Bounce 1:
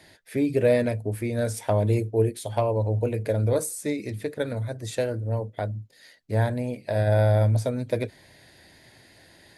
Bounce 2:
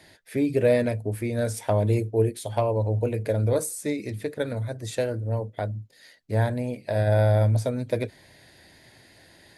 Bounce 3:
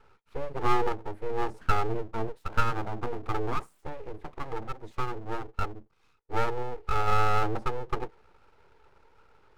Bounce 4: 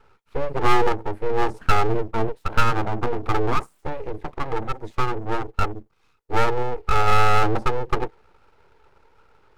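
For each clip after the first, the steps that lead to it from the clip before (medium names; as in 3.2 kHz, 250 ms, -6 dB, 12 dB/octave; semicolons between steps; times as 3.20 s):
no audible change
two resonant band-passes 390 Hz, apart 1.6 oct; full-wave rectifier; trim +8.5 dB
waveshaping leveller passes 1; trim +5 dB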